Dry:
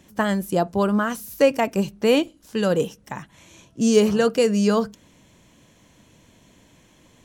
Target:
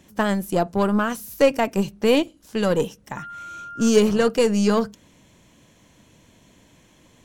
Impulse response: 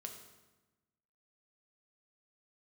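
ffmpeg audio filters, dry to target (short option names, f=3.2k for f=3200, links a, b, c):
-filter_complex "[0:a]asettb=1/sr,asplit=3[a][b][c];[a]atrim=end=3.174[d];[b]atrim=start=3.17:end=3.89,asetpts=PTS-STARTPTS,afade=t=in:d=0.004:c=qsin,afade=t=out:st=0.716:d=0.004:c=qsin,aeval=exprs='val(0)+0.02*sin(2*PI*1400*n/s)':c=same[e];[c]atrim=start=3.886[f];[d][e]acrossfade=d=0.004:c1=hsin:c2=qsin[g];[g][f]acrossfade=d=0.004:c1=qsin:c2=hsin,aeval=exprs='0.631*(cos(1*acos(clip(val(0)/0.631,-1,1)))-cos(1*PI/2))+0.0251*(cos(8*acos(clip(val(0)/0.631,-1,1)))-cos(8*PI/2))':c=same"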